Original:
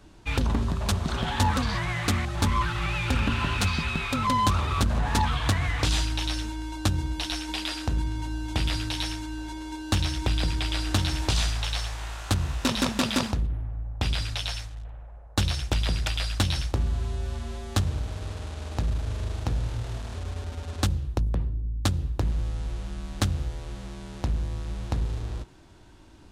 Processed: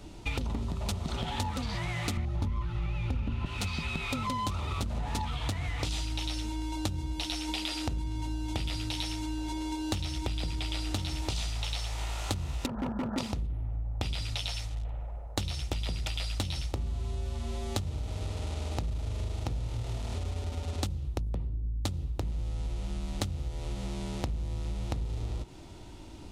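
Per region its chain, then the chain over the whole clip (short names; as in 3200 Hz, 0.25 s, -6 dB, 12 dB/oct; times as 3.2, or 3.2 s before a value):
2.17–3.46 tilt -2.5 dB/oct + notch 7800 Hz, Q 9.7
12.66–13.18 Chebyshev low-pass 1700 Hz, order 8 + hard clip -25.5 dBFS
whole clip: bell 1600 Hz -11.5 dB 0.28 oct; notch 1100 Hz, Q 9.6; compressor, threshold -36 dBFS; gain +5.5 dB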